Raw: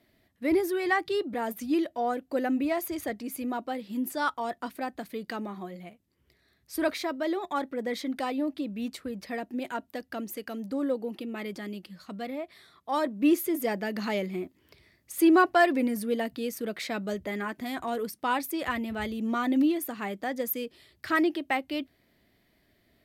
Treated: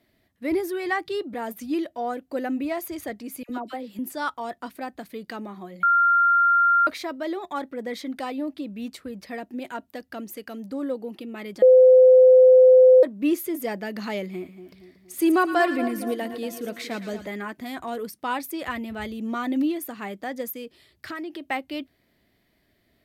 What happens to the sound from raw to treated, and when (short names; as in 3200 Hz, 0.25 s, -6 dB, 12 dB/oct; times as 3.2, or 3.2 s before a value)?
3.43–3.99 dispersion lows, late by 63 ms, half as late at 1100 Hz
5.83–6.87 bleep 1390 Hz -15 dBFS
11.62–13.03 bleep 512 Hz -9 dBFS
14.25–17.28 split-band echo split 1100 Hz, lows 0.234 s, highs 0.113 s, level -10 dB
20.5–21.48 compressor, threshold -31 dBFS